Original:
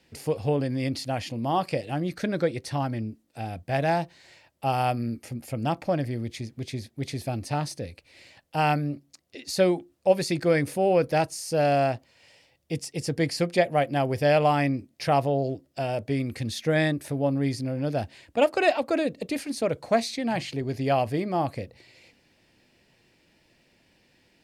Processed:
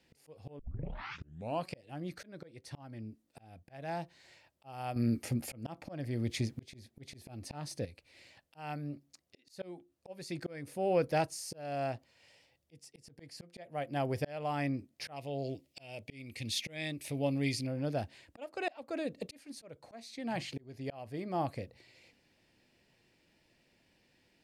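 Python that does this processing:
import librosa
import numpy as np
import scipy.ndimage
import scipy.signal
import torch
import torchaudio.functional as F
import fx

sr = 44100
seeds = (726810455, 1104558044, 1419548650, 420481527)

y = fx.high_shelf_res(x, sr, hz=1900.0, db=6.5, q=3.0, at=(15.16, 17.67))
y = fx.edit(y, sr, fx.tape_start(start_s=0.59, length_s=1.1),
    fx.clip_gain(start_s=4.96, length_s=2.89, db=8.5), tone=tone)
y = fx.auto_swell(y, sr, attack_ms=521.0)
y = y * librosa.db_to_amplitude(-7.0)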